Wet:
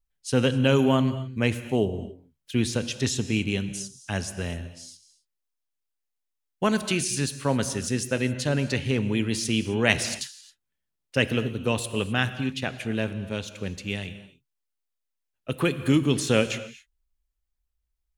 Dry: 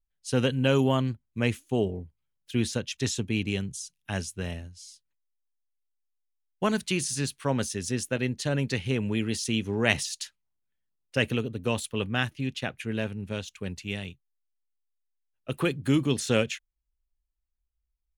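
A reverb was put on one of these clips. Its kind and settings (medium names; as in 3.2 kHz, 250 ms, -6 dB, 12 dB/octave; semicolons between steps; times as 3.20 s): gated-style reverb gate 290 ms flat, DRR 11.5 dB; trim +2.5 dB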